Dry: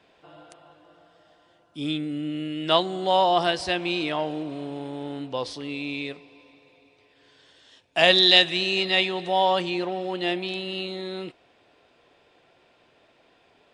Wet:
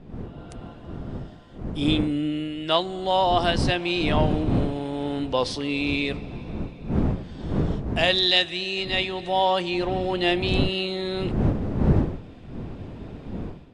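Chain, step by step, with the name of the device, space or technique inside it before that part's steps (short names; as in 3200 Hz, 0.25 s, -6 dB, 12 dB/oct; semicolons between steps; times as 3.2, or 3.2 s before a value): smartphone video outdoors (wind noise -32 dBFS; AGC gain up to 12 dB; gain -5.5 dB; AAC 96 kbps 32000 Hz)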